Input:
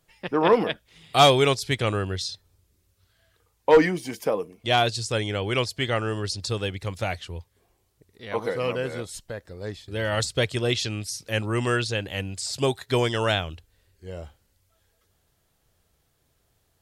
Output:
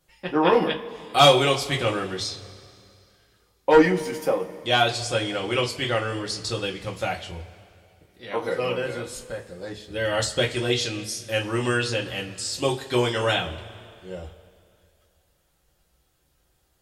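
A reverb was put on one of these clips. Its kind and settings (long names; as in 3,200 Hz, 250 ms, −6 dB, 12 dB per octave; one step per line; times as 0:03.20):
coupled-rooms reverb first 0.21 s, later 2.5 s, from −22 dB, DRR −1.5 dB
level −2.5 dB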